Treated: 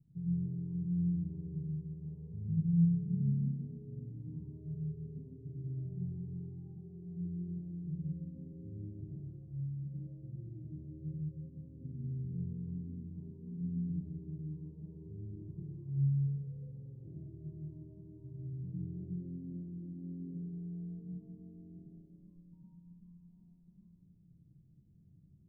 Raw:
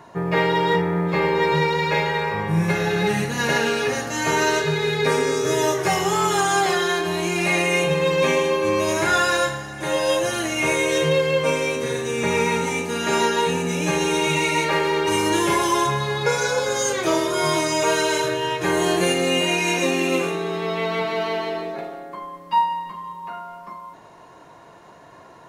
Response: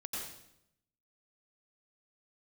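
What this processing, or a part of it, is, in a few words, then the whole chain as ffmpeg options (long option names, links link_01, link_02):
club heard from the street: -filter_complex "[0:a]alimiter=limit=-14dB:level=0:latency=1:release=138,lowpass=frequency=160:width=0.5412,lowpass=frequency=160:width=1.3066[link_01];[1:a]atrim=start_sample=2205[link_02];[link_01][link_02]afir=irnorm=-1:irlink=0,volume=-3.5dB"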